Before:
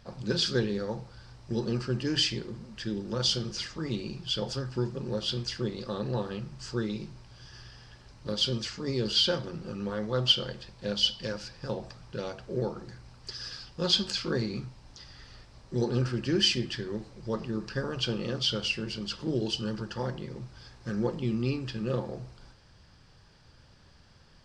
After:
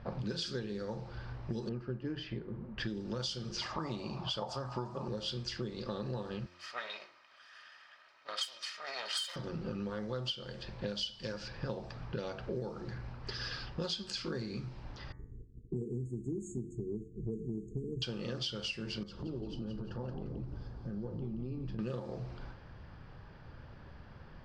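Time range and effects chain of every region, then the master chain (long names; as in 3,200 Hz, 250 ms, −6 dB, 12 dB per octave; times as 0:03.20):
0:01.69–0:02.78: Bessel low-pass filter 1,500 Hz + expander for the loud parts, over −39 dBFS
0:03.61–0:05.08: high-pass filter 49 Hz + flat-topped bell 850 Hz +15 dB 1.3 octaves
0:06.46–0:09.36: lower of the sound and its delayed copy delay 1.6 ms + high-pass filter 1,500 Hz + comb filter 3.2 ms, depth 40%
0:15.12–0:18.02: downward expander −46 dBFS + linear-phase brick-wall band-stop 480–6,400 Hz
0:19.03–0:21.79: parametric band 2,200 Hz −15 dB 2.3 octaves + downward compressor 3 to 1, threshold −46 dBFS + echo with shifted repeats 174 ms, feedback 46%, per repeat −100 Hz, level −7 dB
whole clip: low-pass that shuts in the quiet parts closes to 1,700 Hz, open at −25.5 dBFS; hum removal 88.61 Hz, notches 25; downward compressor 12 to 1, threshold −42 dBFS; level +7 dB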